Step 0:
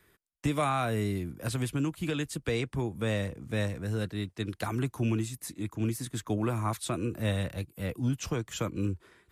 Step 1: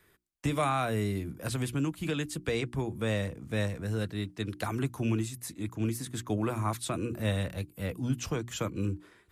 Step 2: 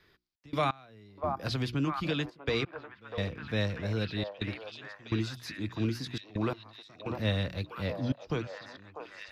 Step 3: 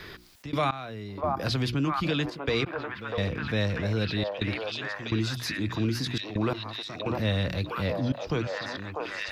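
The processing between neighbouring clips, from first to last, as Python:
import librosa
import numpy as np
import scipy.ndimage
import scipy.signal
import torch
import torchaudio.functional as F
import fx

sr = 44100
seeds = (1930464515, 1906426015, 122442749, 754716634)

y1 = fx.hum_notches(x, sr, base_hz=60, count=6)
y2 = fx.high_shelf_res(y1, sr, hz=6400.0, db=-11.0, q=3.0)
y2 = fx.step_gate(y2, sr, bpm=85, pattern='xx.x...xxxx', floor_db=-24.0, edge_ms=4.5)
y2 = fx.echo_stepped(y2, sr, ms=646, hz=780.0, octaves=0.7, feedback_pct=70, wet_db=-1)
y3 = fx.env_flatten(y2, sr, amount_pct=50)
y3 = F.gain(torch.from_numpy(y3), 1.5).numpy()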